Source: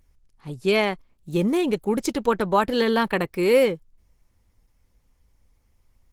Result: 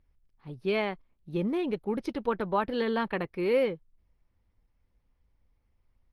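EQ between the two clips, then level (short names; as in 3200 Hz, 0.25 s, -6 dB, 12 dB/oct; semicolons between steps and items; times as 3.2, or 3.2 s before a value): running mean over 6 samples; -7.5 dB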